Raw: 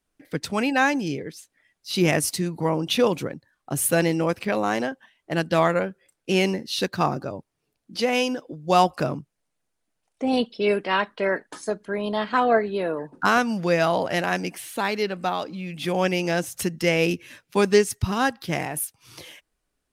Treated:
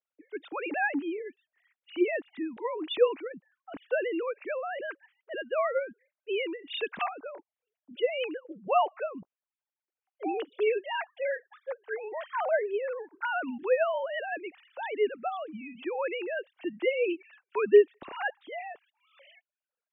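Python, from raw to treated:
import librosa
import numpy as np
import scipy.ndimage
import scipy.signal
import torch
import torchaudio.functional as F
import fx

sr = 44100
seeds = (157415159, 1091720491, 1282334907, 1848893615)

y = fx.sine_speech(x, sr)
y = fx.peak_eq(y, sr, hz=2800.0, db=8.0, octaves=1.3, at=(6.59, 7.21))
y = F.gain(torch.from_numpy(y), -7.0).numpy()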